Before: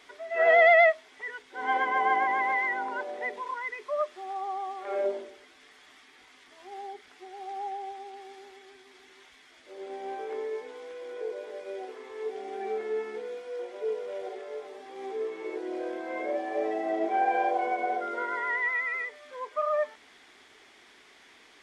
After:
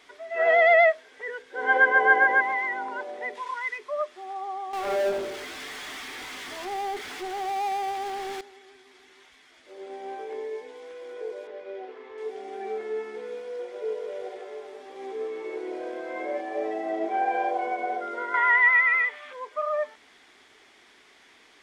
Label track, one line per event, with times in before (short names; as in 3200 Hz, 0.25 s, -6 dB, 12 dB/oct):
0.690000	2.400000	small resonant body resonances 490/1600 Hz, height 13 dB -> 17 dB
3.350000	3.780000	tilt shelf lows -6 dB, about 740 Hz
4.730000	8.410000	power-law curve exponent 0.5
10.230000	10.830000	bell 1300 Hz -9 dB 0.27 oct
11.470000	12.180000	LPF 3400 Hz
13.030000	16.410000	feedback echo 0.157 s, feedback 36%, level -7.5 dB
18.340000	19.330000	band shelf 1600 Hz +10 dB 2.4 oct